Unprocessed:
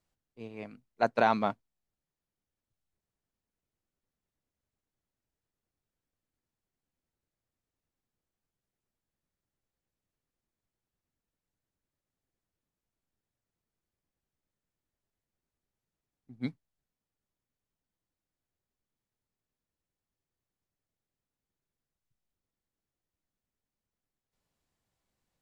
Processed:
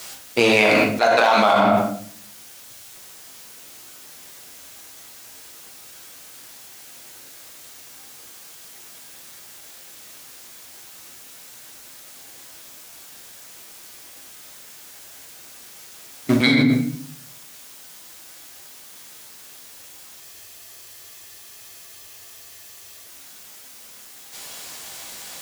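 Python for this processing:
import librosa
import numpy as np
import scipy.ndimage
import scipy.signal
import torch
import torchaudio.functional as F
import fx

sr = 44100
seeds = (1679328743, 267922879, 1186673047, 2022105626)

y = fx.leveller(x, sr, passes=1)
y = fx.highpass(y, sr, hz=870.0, slope=6)
y = fx.high_shelf(y, sr, hz=2600.0, db=9.0)
y = fx.room_shoebox(y, sr, seeds[0], volume_m3=62.0, walls='mixed', distance_m=0.65)
y = fx.spec_freeze(y, sr, seeds[1], at_s=20.22, hold_s=2.83)
y = fx.env_flatten(y, sr, amount_pct=100)
y = F.gain(torch.from_numpy(y), 3.5).numpy()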